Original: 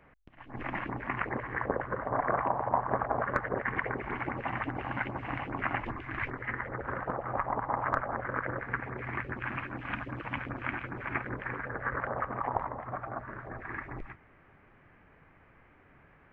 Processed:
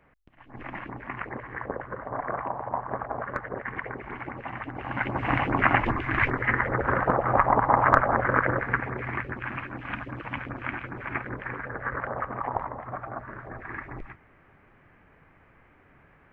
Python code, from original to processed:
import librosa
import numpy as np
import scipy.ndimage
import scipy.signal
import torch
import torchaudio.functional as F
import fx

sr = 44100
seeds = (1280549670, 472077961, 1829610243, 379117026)

y = fx.gain(x, sr, db=fx.line((4.69, -2.0), (5.3, 11.0), (8.34, 11.0), (9.43, 2.0)))